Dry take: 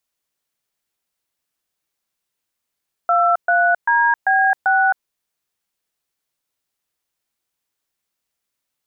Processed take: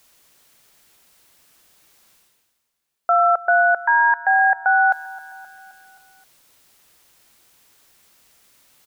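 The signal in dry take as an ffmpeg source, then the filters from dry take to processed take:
-f lavfi -i "aevalsrc='0.178*clip(min(mod(t,0.392),0.266-mod(t,0.392))/0.002,0,1)*(eq(floor(t/0.392),0)*(sin(2*PI*697*mod(t,0.392))+sin(2*PI*1336*mod(t,0.392)))+eq(floor(t/0.392),1)*(sin(2*PI*697*mod(t,0.392))+sin(2*PI*1477*mod(t,0.392)))+eq(floor(t/0.392),2)*(sin(2*PI*941*mod(t,0.392))+sin(2*PI*1633*mod(t,0.392)))+eq(floor(t/0.392),3)*(sin(2*PI*770*mod(t,0.392))+sin(2*PI*1633*mod(t,0.392)))+eq(floor(t/0.392),4)*(sin(2*PI*770*mod(t,0.392))+sin(2*PI*1477*mod(t,0.392))))':d=1.96:s=44100"
-af "areverse,acompressor=mode=upward:threshold=0.0141:ratio=2.5,areverse,aecho=1:1:263|526|789|1052|1315:0.1|0.057|0.0325|0.0185|0.0106"

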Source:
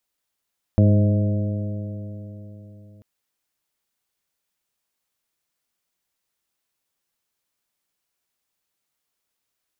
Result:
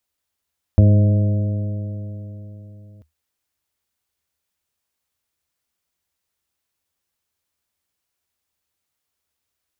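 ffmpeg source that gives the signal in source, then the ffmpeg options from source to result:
-f lavfi -i "aevalsrc='0.251*pow(10,-3*t/3.86)*sin(2*PI*102.1*t)+0.141*pow(10,-3*t/3.86)*sin(2*PI*204.77*t)+0.0631*pow(10,-3*t/3.86)*sin(2*PI*308.61*t)+0.0282*pow(10,-3*t/3.86)*sin(2*PI*414.16*t)+0.0501*pow(10,-3*t/3.86)*sin(2*PI*521.97*t)+0.0447*pow(10,-3*t/3.86)*sin(2*PI*632.58*t)':d=2.24:s=44100"
-af "equalizer=f=77:t=o:w=0.48:g=14"

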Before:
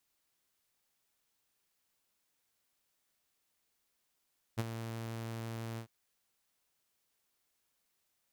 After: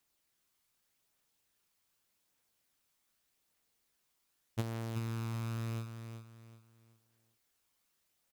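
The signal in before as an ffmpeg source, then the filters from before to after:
-f lavfi -i "aevalsrc='0.0473*(2*mod(114*t,1)-1)':d=1.3:s=44100,afade=t=in:d=0.024,afade=t=out:st=0.024:d=0.032:silence=0.316,afade=t=out:st=1.21:d=0.09"
-filter_complex "[0:a]aphaser=in_gain=1:out_gain=1:delay=1:decay=0.24:speed=0.84:type=triangular,asplit=2[s0][s1];[s1]aecho=0:1:378|756|1134|1512:0.398|0.127|0.0408|0.013[s2];[s0][s2]amix=inputs=2:normalize=0"

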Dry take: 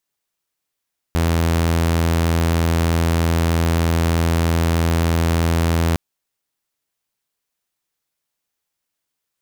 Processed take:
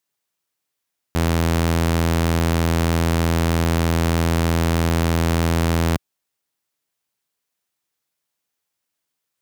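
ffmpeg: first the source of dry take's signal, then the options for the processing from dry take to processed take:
-f lavfi -i "aevalsrc='0.237*(2*mod(83.2*t,1)-1)':d=4.81:s=44100"
-af "highpass=76"

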